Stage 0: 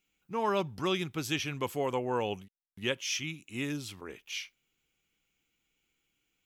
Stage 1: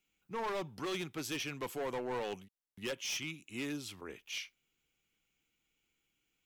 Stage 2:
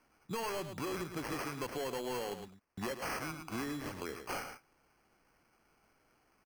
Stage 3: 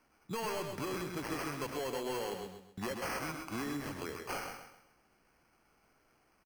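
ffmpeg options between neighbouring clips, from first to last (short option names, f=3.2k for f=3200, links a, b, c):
-filter_complex "[0:a]acrossover=split=180[a][b];[a]acompressor=threshold=-53dB:ratio=6[c];[c][b]amix=inputs=2:normalize=0,volume=31dB,asoftclip=hard,volume=-31dB,volume=-2.5dB"
-af "acrusher=samples=12:mix=1:aa=0.000001,aecho=1:1:109:0.251,acompressor=threshold=-47dB:ratio=6,volume=10dB"
-af "aecho=1:1:131|262|393|524:0.422|0.143|0.0487|0.0166"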